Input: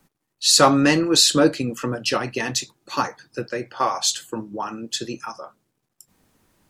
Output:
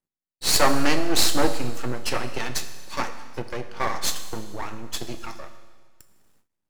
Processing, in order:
half-wave rectification
four-comb reverb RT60 1.6 s, combs from 26 ms, DRR 9.5 dB
noise gate with hold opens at −49 dBFS
level −1 dB

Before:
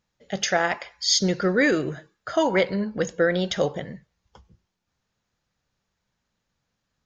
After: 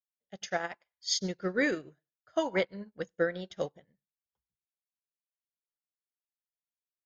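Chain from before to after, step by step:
on a send at −22 dB: convolution reverb, pre-delay 96 ms
on the sum: expander for the loud parts 2.5 to 1, over −41 dBFS
level −6 dB

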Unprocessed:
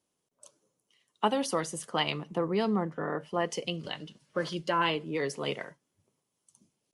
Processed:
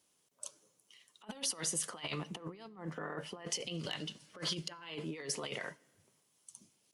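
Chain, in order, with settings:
compressor whose output falls as the input rises −36 dBFS, ratio −0.5
asymmetric clip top −20 dBFS, bottom −16.5 dBFS
brickwall limiter −27 dBFS, peak gain reduction 10 dB
tilt shelving filter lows −4.5 dB, about 1,200 Hz
on a send: convolution reverb RT60 1.4 s, pre-delay 6 ms, DRR 23 dB
on the sum: level −1 dB

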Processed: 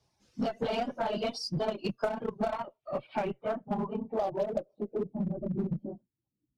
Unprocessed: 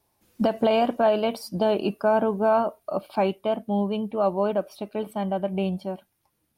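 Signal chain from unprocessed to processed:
random phases in long frames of 50 ms
parametric band 130 Hz +11 dB 0.35 octaves
reverb reduction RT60 1.3 s
harmonic generator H 2 −17 dB, 4 −17 dB, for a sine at −9 dBFS
low-pass filter sweep 5,700 Hz → 290 Hz, 0:02.11–0:05.33
0:01.65–0:02.83: transient designer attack +9 dB, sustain −8 dB
in parallel at −11 dB: wave folding −24 dBFS
on the sum: downward compressor 6 to 1, threshold −22 dBFS, peak gain reduction 12.5 dB
level −5.5 dB

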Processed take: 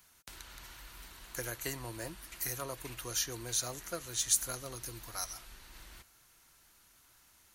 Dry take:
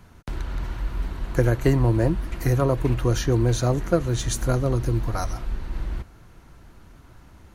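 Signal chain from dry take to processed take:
first-order pre-emphasis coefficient 0.97
level +2.5 dB

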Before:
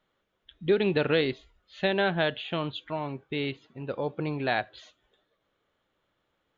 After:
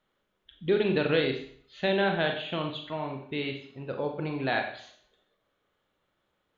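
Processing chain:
four-comb reverb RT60 0.56 s, combs from 30 ms, DRR 3.5 dB
level −2 dB

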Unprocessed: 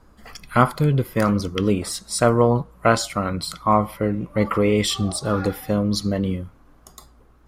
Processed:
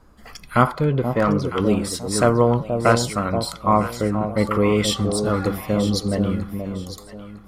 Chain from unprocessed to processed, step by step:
0:00.67–0:01.60: mid-hump overdrive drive 14 dB, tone 1,000 Hz, clips at −6.5 dBFS
delay that swaps between a low-pass and a high-pass 478 ms, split 830 Hz, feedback 52%, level −6 dB

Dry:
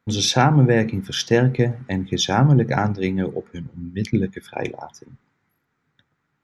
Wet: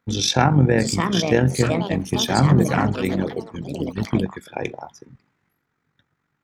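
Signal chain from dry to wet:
amplitude modulation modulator 46 Hz, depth 40%
delay with pitch and tempo change per echo 710 ms, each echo +5 semitones, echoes 3, each echo −6 dB
level +1.5 dB

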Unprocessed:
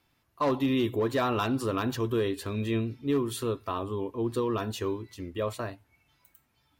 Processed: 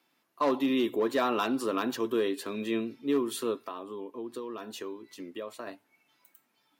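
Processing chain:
high-pass filter 210 Hz 24 dB per octave
0:03.63–0:05.67: downward compressor 3 to 1, threshold −38 dBFS, peak gain reduction 10.5 dB

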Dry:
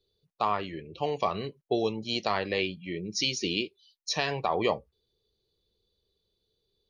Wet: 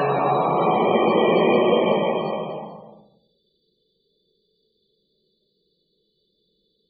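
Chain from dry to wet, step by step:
extreme stretch with random phases 5.2×, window 0.50 s, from 0:04.38
spectral peaks only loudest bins 64
low shelf with overshoot 130 Hz −10.5 dB, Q 3
level +8.5 dB

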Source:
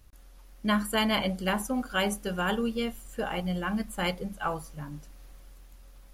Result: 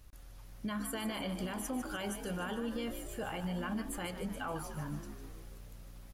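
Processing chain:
downward compressor, threshold −30 dBFS, peak gain reduction 9 dB
brickwall limiter −30 dBFS, peak gain reduction 11.5 dB
echo with shifted repeats 149 ms, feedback 56%, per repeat +60 Hz, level −10 dB

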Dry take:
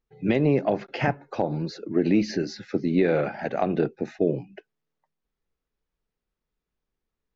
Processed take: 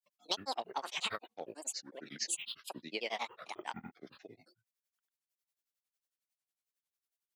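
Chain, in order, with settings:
granular cloud, grains 11 per second, pitch spread up and down by 12 semitones
first difference
level +6 dB

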